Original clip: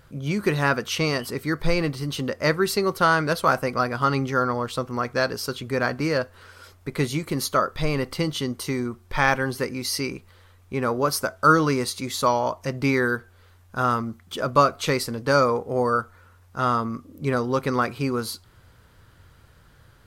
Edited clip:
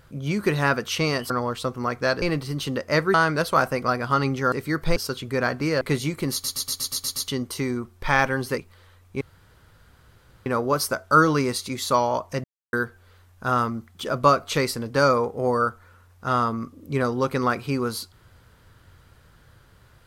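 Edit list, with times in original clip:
0:01.30–0:01.74: swap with 0:04.43–0:05.35
0:02.66–0:03.05: remove
0:06.20–0:06.90: remove
0:07.41: stutter in place 0.12 s, 8 plays
0:09.67–0:10.15: remove
0:10.78: splice in room tone 1.25 s
0:12.76–0:13.05: silence

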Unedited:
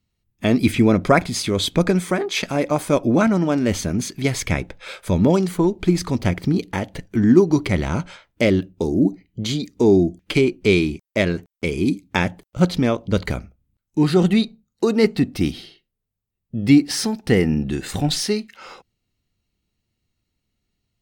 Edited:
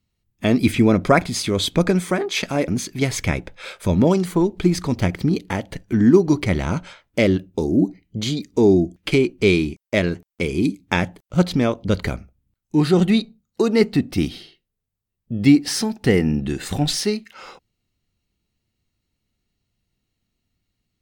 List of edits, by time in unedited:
0:02.68–0:03.91: remove

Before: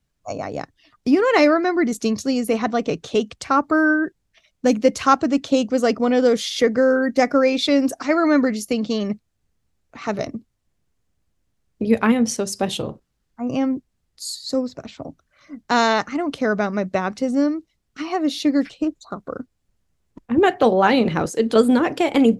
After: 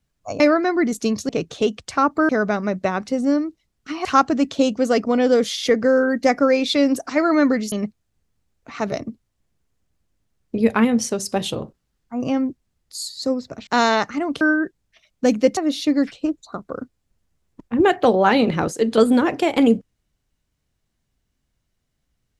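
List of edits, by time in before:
0:00.40–0:01.40: remove
0:02.29–0:02.82: remove
0:03.82–0:04.98: swap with 0:16.39–0:18.15
0:08.65–0:08.99: remove
0:14.94–0:15.65: remove

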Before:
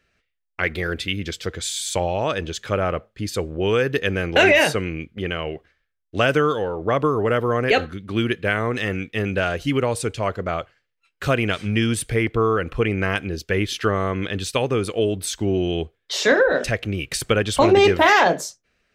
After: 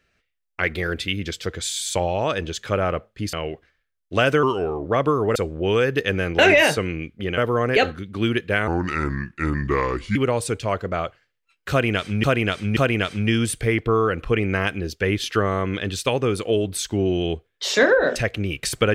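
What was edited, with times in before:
0:03.33–0:05.35: move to 0:07.32
0:06.45–0:06.82: play speed 87%
0:08.62–0:09.70: play speed 73%
0:11.25–0:11.78: repeat, 3 plays

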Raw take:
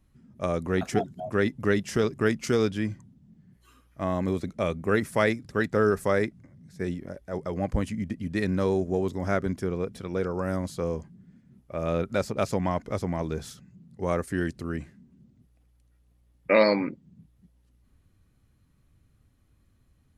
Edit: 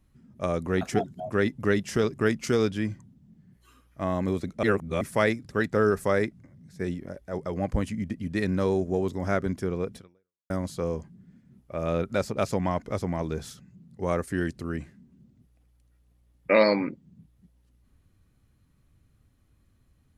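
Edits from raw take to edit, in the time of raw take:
0:04.63–0:05.01: reverse
0:09.96–0:10.50: fade out exponential

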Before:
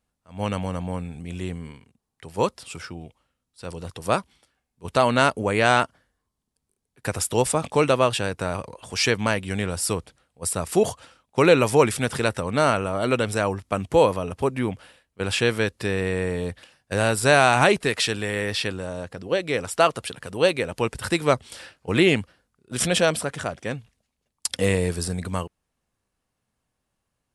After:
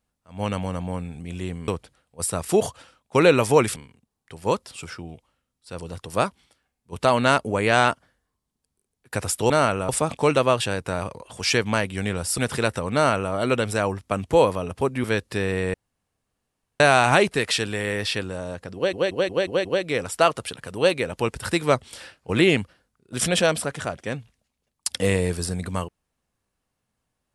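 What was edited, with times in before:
0:09.91–0:11.99: move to 0:01.68
0:12.55–0:12.94: duplicate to 0:07.42
0:14.65–0:15.53: remove
0:16.23–0:17.29: fill with room tone
0:19.24: stutter 0.18 s, 6 plays

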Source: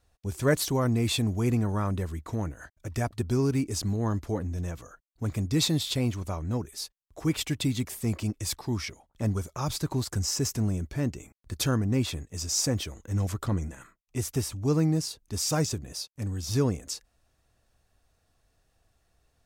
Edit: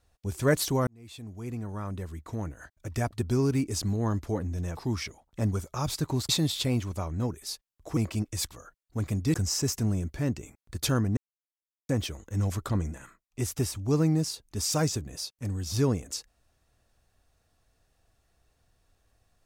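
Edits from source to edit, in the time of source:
0:00.87–0:03.03: fade in
0:04.77–0:05.60: swap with 0:08.59–0:10.11
0:07.28–0:08.05: remove
0:11.94–0:12.66: silence

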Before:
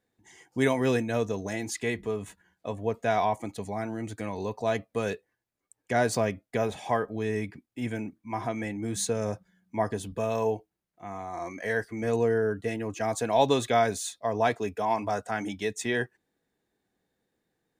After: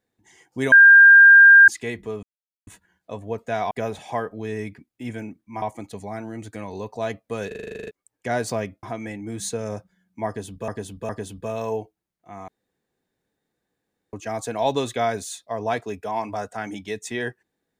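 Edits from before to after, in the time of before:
0:00.72–0:01.68: beep over 1,600 Hz −6 dBFS
0:02.23: splice in silence 0.44 s
0:05.12: stutter in place 0.04 s, 11 plays
0:06.48–0:08.39: move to 0:03.27
0:09.83–0:10.24: repeat, 3 plays
0:11.22–0:12.87: fill with room tone

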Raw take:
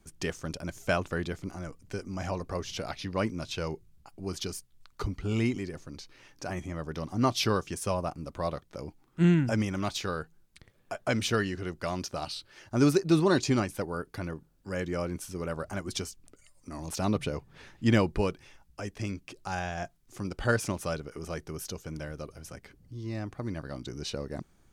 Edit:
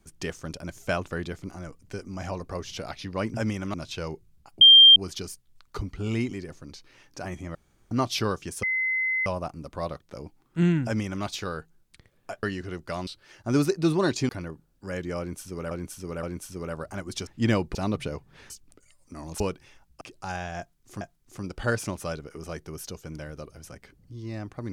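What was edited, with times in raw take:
0:04.21: insert tone 3,180 Hz −8.5 dBFS 0.35 s
0:06.80–0:07.16: fill with room tone
0:07.88: insert tone 2,050 Hz −23 dBFS 0.63 s
0:09.46–0:09.86: duplicate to 0:03.34
0:11.05–0:11.37: remove
0:12.01–0:12.34: remove
0:13.56–0:14.12: remove
0:15.02–0:15.54: repeat, 3 plays
0:16.06–0:16.96: swap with 0:17.71–0:18.19
0:18.80–0:19.24: remove
0:19.82–0:20.24: repeat, 2 plays

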